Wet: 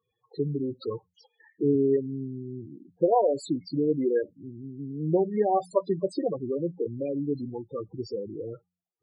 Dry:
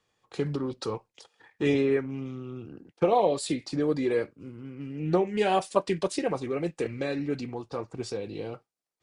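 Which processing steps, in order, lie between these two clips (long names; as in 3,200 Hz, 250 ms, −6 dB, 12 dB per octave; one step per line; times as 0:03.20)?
hum removal 89.23 Hz, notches 2
spectral peaks only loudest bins 8
level +1.5 dB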